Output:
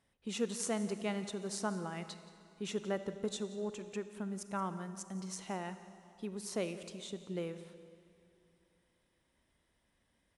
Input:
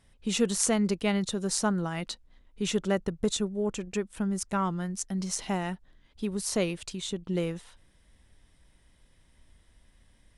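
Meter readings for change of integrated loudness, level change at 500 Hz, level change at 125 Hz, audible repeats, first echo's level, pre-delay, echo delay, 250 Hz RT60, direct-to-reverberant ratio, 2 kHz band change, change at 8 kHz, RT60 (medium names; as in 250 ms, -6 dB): -10.0 dB, -8.0 dB, -11.0 dB, 1, -18.0 dB, 31 ms, 176 ms, 2.7 s, 10.5 dB, -9.0 dB, -12.0 dB, 2.7 s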